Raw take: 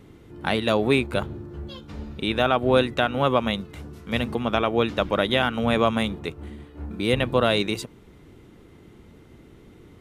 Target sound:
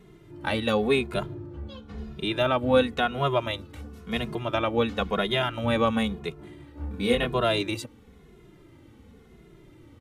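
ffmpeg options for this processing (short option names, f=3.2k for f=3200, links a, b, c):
-filter_complex "[0:a]asettb=1/sr,asplit=3[a][b][c];[a]atrim=end=1.344[d];[b]atrim=start=1.34:end=1.98,asetpts=PTS-STARTPTS,afade=t=in:d=0.004:c=qsin,afade=t=out:st=0.636:d=0.004:c=qsin,aemphasis=mode=reproduction:type=cd[e];[c]atrim=start=1.976[f];[d][e]acrossfade=d=0.004:c1=hsin:c2=qsin[g];[g][f]acrossfade=d=0.004:c1=qsin:c2=hsin,asettb=1/sr,asplit=3[h][i][j];[h]atrim=end=6.654[k];[i]atrim=start=6.65:end=7.35,asetpts=PTS-STARTPTS,afade=t=in:d=0.004:c=qsin,afade=t=out:st=0.696:d=0.004:c=qsin,asplit=2[l][m];[m]adelay=25,volume=-3dB[n];[l][n]amix=inputs=2:normalize=0,atrim=end_sample=30870[o];[j]atrim=start=7.346[p];[k][o]acrossfade=d=0.004:c1=hsin:c2=qsin[q];[q][p]acrossfade=d=0.004:c1=qsin:c2=hsin,asplit=2[r][s];[s]adelay=2.4,afreqshift=-0.96[t];[r][t]amix=inputs=2:normalize=1"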